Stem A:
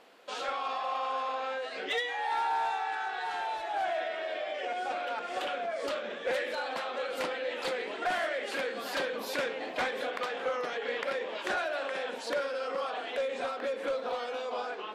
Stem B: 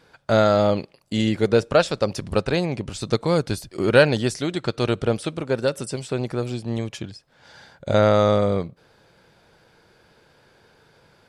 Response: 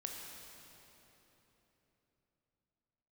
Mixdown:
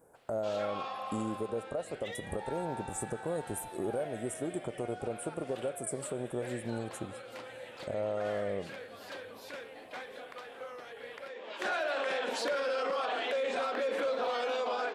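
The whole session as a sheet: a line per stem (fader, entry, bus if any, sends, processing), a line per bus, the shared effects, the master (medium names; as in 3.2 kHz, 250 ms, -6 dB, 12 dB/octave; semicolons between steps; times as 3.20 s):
-5.5 dB, 0.15 s, no send, level rider gain up to 11.5 dB; high-pass 120 Hz; auto duck -18 dB, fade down 1.50 s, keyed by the second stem
-12.0 dB, 0.00 s, send -12.5 dB, FFT filter 140 Hz 0 dB, 660 Hz +10 dB, 4.3 kHz -24 dB, 8.3 kHz +14 dB; compression 6:1, threshold -21 dBFS, peak gain reduction 17.5 dB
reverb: on, RT60 3.7 s, pre-delay 17 ms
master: peak limiter -25 dBFS, peak gain reduction 8.5 dB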